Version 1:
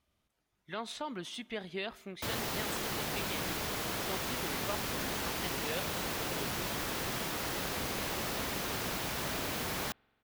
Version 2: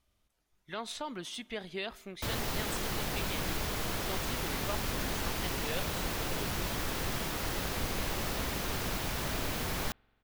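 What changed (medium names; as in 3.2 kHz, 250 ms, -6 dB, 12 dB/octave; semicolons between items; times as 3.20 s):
speech: add tone controls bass -4 dB, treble +4 dB; master: remove high-pass 150 Hz 6 dB/octave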